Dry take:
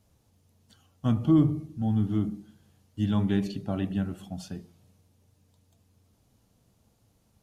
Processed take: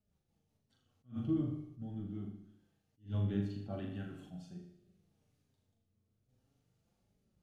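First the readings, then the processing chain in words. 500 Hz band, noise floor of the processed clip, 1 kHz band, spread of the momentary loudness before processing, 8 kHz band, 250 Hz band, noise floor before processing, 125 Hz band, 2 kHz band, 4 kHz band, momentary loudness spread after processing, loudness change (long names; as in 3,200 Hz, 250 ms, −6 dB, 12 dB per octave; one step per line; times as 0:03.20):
−10.5 dB, −81 dBFS, −15.5 dB, 18 LU, can't be measured, −13.0 dB, −68 dBFS, −11.0 dB, −12.0 dB, −14.5 dB, 17 LU, −12.0 dB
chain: high-shelf EQ 5,800 Hz −9 dB
notch filter 1,000 Hz, Q 11
flanger 0.42 Hz, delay 4.7 ms, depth 4.7 ms, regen +32%
rotating-speaker cabinet horn 5 Hz, later 0.75 Hz, at 0:00.85
sample-and-hold tremolo
on a send: flutter between parallel walls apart 6.8 metres, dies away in 0.53 s
on the sum: reverb whose tail is shaped and stops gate 380 ms falling, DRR 12 dB
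level that may rise only so fast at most 240 dB per second
level −4 dB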